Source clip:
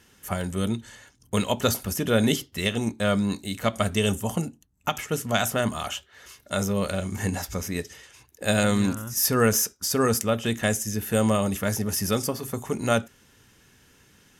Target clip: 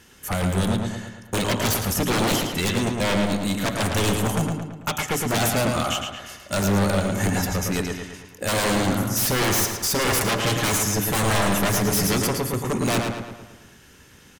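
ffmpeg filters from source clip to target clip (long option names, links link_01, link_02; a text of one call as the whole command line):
ffmpeg -i in.wav -filter_complex "[0:a]asettb=1/sr,asplit=3[link_01][link_02][link_03];[link_01]atrim=end=10.074[link_04];[link_02]atrim=start=10.07:end=12.07,asetpts=PTS-STARTPTS,afade=type=in:duration=0.004:curve=qsin,afade=type=out:start_time=1.996:duration=0.004:curve=qsin,aecho=1:1:6.6:0.9,atrim=end_sample=88200[link_05];[link_03]atrim=start=12.066[link_06];[link_04][link_05]acrossfade=duration=0.004:curve1=hsin:curve2=qsin[link_07];[link_07][link_06]acrossfade=duration=0.004:curve1=qsin:curve2=hsin,aeval=exprs='0.0708*(abs(mod(val(0)/0.0708+3,4)-2)-1)':channel_layout=same,asplit=2[link_08][link_09];[link_09]adelay=111,lowpass=frequency=4300:poles=1,volume=-3.5dB,asplit=2[link_10][link_11];[link_11]adelay=111,lowpass=frequency=4300:poles=1,volume=0.54,asplit=2[link_12][link_13];[link_13]adelay=111,lowpass=frequency=4300:poles=1,volume=0.54,asplit=2[link_14][link_15];[link_15]adelay=111,lowpass=frequency=4300:poles=1,volume=0.54,asplit=2[link_16][link_17];[link_17]adelay=111,lowpass=frequency=4300:poles=1,volume=0.54,asplit=2[link_18][link_19];[link_19]adelay=111,lowpass=frequency=4300:poles=1,volume=0.54,asplit=2[link_20][link_21];[link_21]adelay=111,lowpass=frequency=4300:poles=1,volume=0.54[link_22];[link_08][link_10][link_12][link_14][link_16][link_18][link_20][link_22]amix=inputs=8:normalize=0,volume=5.5dB" out.wav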